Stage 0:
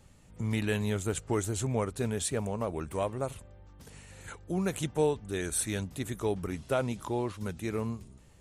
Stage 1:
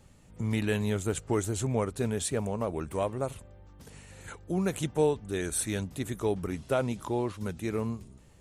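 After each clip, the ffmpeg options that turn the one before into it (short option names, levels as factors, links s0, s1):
-af "equalizer=f=310:w=0.43:g=2"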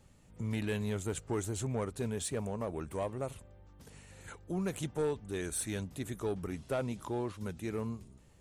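-af "asoftclip=type=tanh:threshold=0.0891,volume=0.596"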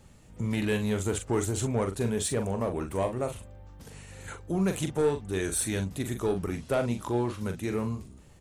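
-filter_complex "[0:a]asplit=2[s0][s1];[s1]adelay=42,volume=0.422[s2];[s0][s2]amix=inputs=2:normalize=0,volume=2.11"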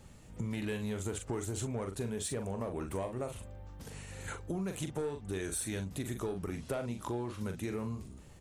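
-af "acompressor=threshold=0.02:ratio=6"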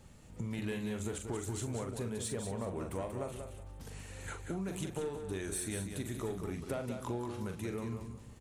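-af "aecho=1:1:186|372|558:0.447|0.116|0.0302,volume=0.794"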